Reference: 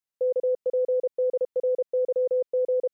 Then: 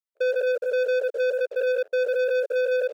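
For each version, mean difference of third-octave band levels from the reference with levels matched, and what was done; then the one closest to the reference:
7.0 dB: spectrum averaged block by block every 50 ms
leveller curve on the samples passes 3
inverse Chebyshev high-pass filter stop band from 210 Hz, stop band 40 dB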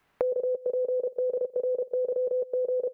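1.5 dB: notch filter 520 Hz, Q 12
on a send: repeating echo 126 ms, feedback 25%, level −21 dB
on the sum: multiband upward and downward compressor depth 100%
level +2 dB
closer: second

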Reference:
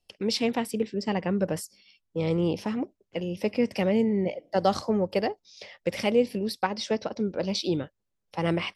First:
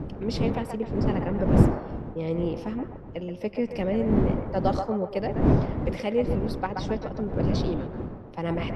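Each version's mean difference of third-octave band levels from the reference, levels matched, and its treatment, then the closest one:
8.5 dB: wind on the microphone 260 Hz −25 dBFS
high-shelf EQ 2,900 Hz −9.5 dB
delay with a band-pass on its return 128 ms, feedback 43%, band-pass 1,000 Hz, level −4.5 dB
level −2.5 dB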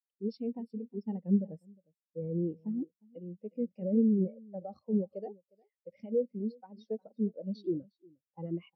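14.5 dB: brickwall limiter −19 dBFS, peak gain reduction 10 dB
single-tap delay 357 ms −10.5 dB
every bin expanded away from the loudest bin 2.5 to 1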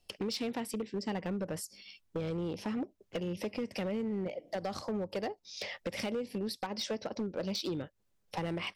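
4.5 dB: in parallel at −0.5 dB: brickwall limiter −18.5 dBFS, peak gain reduction 9.5 dB
on the sum: downward compressor 8 to 1, threshold −32 dBFS, peak gain reduction 18 dB
hard clipping −29.5 dBFS, distortion −15 dB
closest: third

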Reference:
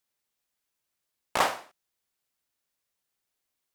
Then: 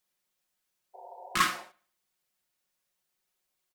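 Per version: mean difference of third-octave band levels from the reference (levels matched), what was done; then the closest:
4.0 dB: healed spectral selection 0:00.97–0:01.56, 380–1,000 Hz after
comb filter 5.5 ms
bucket-brigade delay 73 ms, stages 2,048, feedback 38%, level −22.5 dB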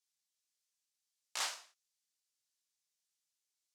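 8.5 dB: in parallel at −3.5 dB: soft clipping −22.5 dBFS, distortion −9 dB
on the sum: resonant band-pass 6,100 Hz, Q 1.2
micro pitch shift up and down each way 55 cents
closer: first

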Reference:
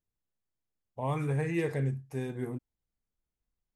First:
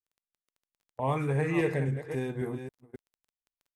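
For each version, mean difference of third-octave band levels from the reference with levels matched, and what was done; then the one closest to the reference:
3.5 dB: delay that plays each chunk backwards 269 ms, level −8.5 dB
noise gate −42 dBFS, range −25 dB
bass and treble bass −4 dB, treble −4 dB
surface crackle 16 per second −57 dBFS
level +4 dB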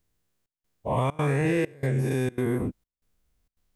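8.5 dB: every bin's largest magnitude spread in time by 240 ms
notch filter 850 Hz, Q 13
downward compressor, threshold −29 dBFS, peak gain reduction 8 dB
gate pattern "xxxxx..xxxxx." 164 BPM −24 dB
level +8 dB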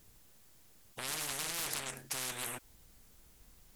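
17.0 dB: high-shelf EQ 4,900 Hz +6 dB
in parallel at −1 dB: brickwall limiter −27.5 dBFS, peak gain reduction 8 dB
on the sum: sine wavefolder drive 11 dB, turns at −16.5 dBFS
every bin compressed towards the loudest bin 10 to 1
level −4 dB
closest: first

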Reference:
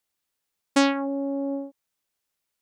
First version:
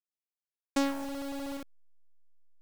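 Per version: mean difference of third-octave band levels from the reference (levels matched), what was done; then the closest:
13.5 dB: hold until the input has moved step −27 dBFS
dynamic equaliser 2,600 Hz, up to −5 dB, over −35 dBFS, Q 0.74
level −8 dB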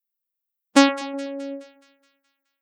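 5.5 dB: spectral dynamics exaggerated over time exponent 2
on a send: echo with a time of its own for lows and highs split 1,300 Hz, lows 124 ms, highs 211 ms, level −16 dB
on the sum: level +7 dB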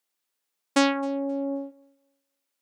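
1.5 dB: high-pass filter 230 Hz
feedback echo with a high-pass in the loop 264 ms, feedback 24%, high-pass 340 Hz, level −24 dB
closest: third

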